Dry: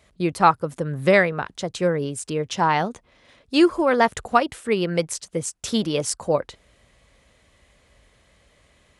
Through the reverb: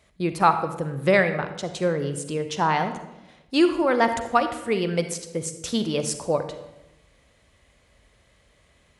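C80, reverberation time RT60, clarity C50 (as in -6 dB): 11.5 dB, 0.95 s, 9.5 dB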